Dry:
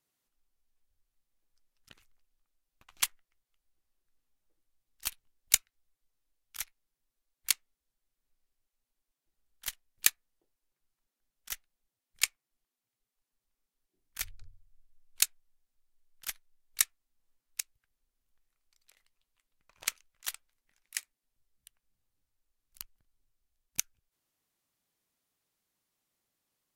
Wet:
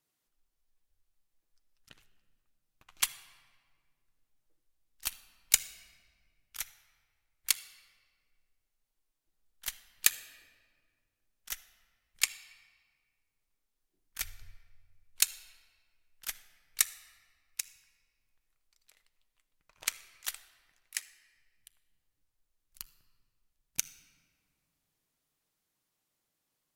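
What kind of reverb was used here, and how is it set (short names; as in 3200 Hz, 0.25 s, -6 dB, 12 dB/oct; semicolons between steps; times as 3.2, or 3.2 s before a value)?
shoebox room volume 2900 m³, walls mixed, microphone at 0.51 m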